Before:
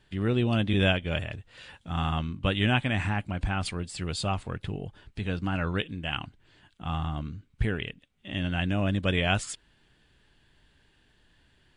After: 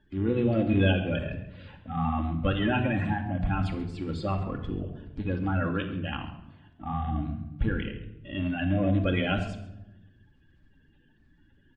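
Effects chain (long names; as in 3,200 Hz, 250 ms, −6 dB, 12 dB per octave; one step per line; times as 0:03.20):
spectral magnitudes quantised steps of 30 dB
head-to-tape spacing loss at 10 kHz 28 dB
single-tap delay 136 ms −17.5 dB
rectangular room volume 3,200 cubic metres, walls furnished, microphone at 2.3 metres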